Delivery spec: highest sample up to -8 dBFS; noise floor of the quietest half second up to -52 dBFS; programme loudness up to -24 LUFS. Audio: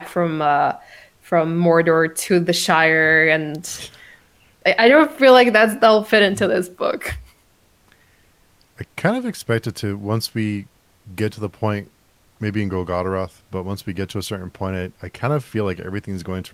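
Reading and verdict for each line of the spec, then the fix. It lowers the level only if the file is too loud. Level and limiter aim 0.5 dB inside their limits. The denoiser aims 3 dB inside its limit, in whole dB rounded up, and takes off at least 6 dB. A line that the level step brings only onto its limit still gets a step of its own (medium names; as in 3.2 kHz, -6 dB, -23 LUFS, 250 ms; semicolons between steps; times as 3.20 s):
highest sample -2.0 dBFS: fail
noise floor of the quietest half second -57 dBFS: pass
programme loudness -18.5 LUFS: fail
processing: trim -6 dB; peak limiter -8.5 dBFS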